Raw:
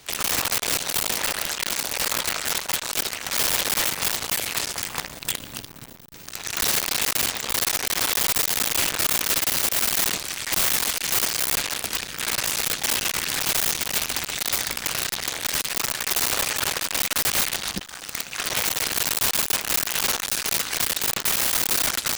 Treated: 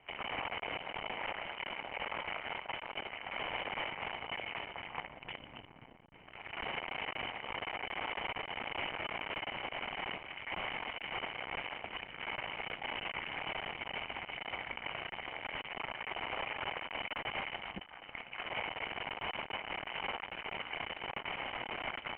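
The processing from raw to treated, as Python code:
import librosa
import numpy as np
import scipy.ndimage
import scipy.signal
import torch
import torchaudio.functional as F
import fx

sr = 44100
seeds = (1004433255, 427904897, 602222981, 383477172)

y = scipy.signal.sosfilt(scipy.signal.cheby1(6, 9, 3100.0, 'lowpass', fs=sr, output='sos'), x)
y = F.gain(torch.from_numpy(y), -5.5).numpy()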